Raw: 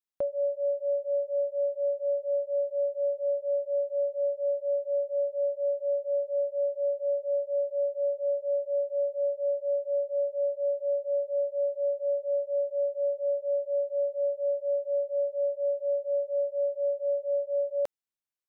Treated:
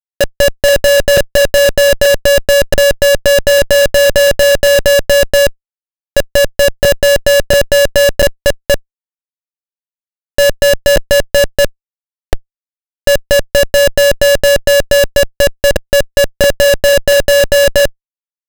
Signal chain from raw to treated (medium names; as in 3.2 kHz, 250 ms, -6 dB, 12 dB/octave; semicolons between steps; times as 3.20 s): chunks repeated in reverse 685 ms, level -3 dB; in parallel at +1 dB: level held to a coarse grid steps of 23 dB; on the sum: small resonant body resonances 370/520 Hz, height 10 dB, ringing for 40 ms; careless resampling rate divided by 2×, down none, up zero stuff; on a send at -17 dB: reverberation RT60 1.9 s, pre-delay 7 ms; on the sum: Schmitt trigger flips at -10 dBFS; trim +7.5 dB